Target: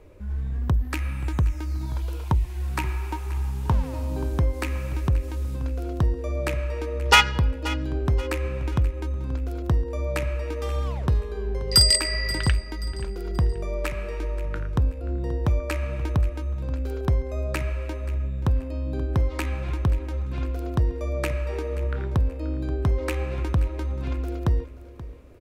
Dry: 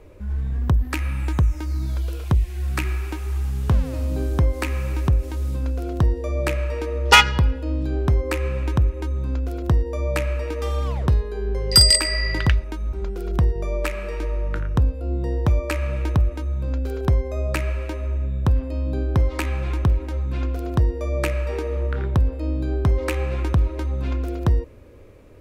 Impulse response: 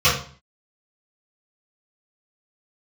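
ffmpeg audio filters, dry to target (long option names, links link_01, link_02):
-filter_complex "[0:a]asettb=1/sr,asplit=3[link_01][link_02][link_03];[link_01]atrim=end=1.824[link_04];[link_02]atrim=start=1.82:end=4.32,asetpts=PTS-STARTPTS,afade=type=in:duration=0.004:curve=qsin,afade=type=out:start_time=2.496:duration=0.004:curve=qsin,equalizer=frequency=920:width_type=o:width=0.25:gain=13.5[link_05];[link_03]atrim=start=4.316[link_06];[link_04][link_05]acrossfade=duration=0.004:curve1=hsin:curve2=qsin[link_07];[link_07][link_06]acrossfade=duration=0.004:curve1=qsin:curve2=hsin,aecho=1:1:530|1060|1590:0.15|0.0509|0.0173,volume=-3.5dB"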